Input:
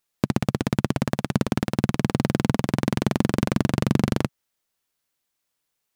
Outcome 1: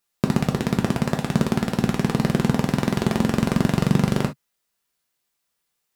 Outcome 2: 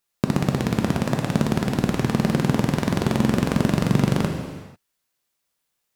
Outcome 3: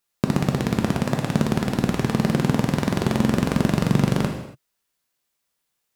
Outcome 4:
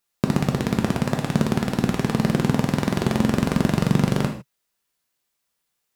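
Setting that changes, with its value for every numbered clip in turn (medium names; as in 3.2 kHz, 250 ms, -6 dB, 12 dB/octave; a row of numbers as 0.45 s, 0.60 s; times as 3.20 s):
gated-style reverb, gate: 90 ms, 520 ms, 310 ms, 180 ms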